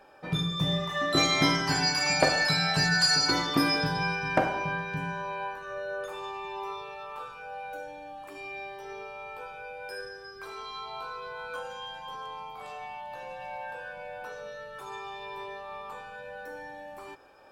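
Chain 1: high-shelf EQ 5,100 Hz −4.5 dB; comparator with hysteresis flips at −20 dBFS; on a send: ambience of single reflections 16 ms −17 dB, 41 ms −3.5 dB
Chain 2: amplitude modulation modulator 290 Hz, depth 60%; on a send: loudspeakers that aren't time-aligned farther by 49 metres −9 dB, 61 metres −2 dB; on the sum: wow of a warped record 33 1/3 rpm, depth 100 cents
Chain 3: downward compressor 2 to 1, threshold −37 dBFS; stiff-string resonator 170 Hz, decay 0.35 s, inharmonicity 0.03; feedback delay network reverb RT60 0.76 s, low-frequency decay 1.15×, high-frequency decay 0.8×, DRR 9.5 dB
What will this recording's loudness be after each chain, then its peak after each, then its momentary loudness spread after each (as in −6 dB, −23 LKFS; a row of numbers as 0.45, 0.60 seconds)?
−35.0, −29.0, −48.0 LKFS; −22.5, −9.5, −31.0 dBFS; 10, 19, 16 LU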